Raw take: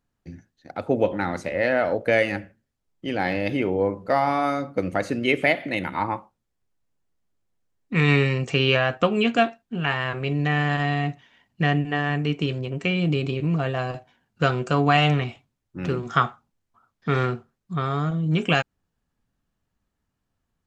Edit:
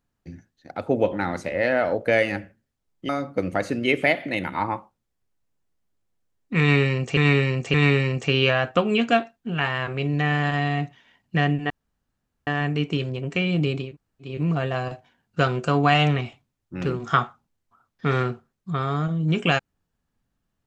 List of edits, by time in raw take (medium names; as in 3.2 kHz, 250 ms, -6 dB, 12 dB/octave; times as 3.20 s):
3.09–4.49 s: delete
8.00–8.57 s: loop, 3 plays
11.96 s: insert room tone 0.77 s
13.34 s: insert room tone 0.46 s, crossfade 0.24 s